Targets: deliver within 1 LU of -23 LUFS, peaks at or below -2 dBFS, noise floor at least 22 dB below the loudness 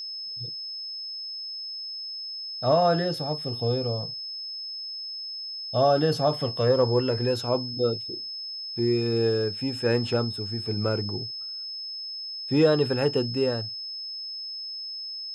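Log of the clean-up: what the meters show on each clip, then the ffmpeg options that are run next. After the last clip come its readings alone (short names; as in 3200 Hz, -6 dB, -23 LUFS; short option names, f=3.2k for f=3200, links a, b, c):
steady tone 5200 Hz; tone level -33 dBFS; loudness -27.0 LUFS; peak -9.5 dBFS; loudness target -23.0 LUFS
-> -af "bandreject=f=5.2k:w=30"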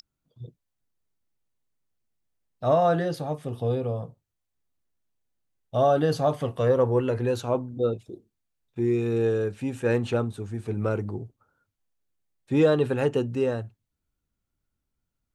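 steady tone none; loudness -25.5 LUFS; peak -9.5 dBFS; loudness target -23.0 LUFS
-> -af "volume=2.5dB"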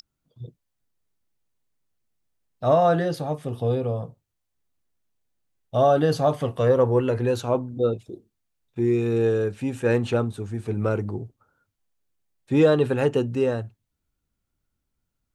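loudness -23.0 LUFS; peak -7.0 dBFS; noise floor -79 dBFS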